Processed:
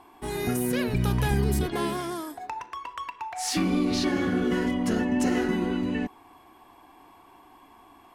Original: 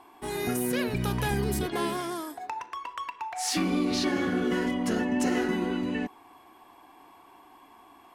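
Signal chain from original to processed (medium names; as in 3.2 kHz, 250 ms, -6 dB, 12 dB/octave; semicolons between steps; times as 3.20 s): bass shelf 140 Hz +9.5 dB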